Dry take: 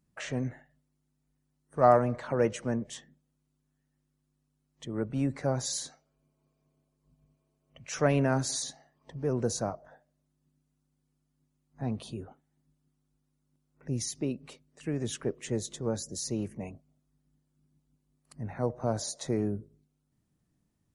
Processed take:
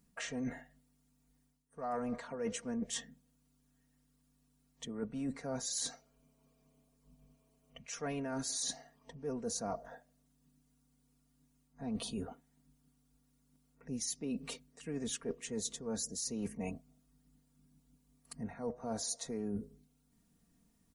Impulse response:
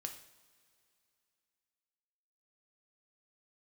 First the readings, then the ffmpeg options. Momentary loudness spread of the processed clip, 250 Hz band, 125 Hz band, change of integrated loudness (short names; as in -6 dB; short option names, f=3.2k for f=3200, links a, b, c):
14 LU, -6.5 dB, -14.5 dB, -8.5 dB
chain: -af "highshelf=f=5k:g=6,aecho=1:1:4.3:0.68,areverse,acompressor=threshold=-38dB:ratio=10,areverse,volume=2.5dB"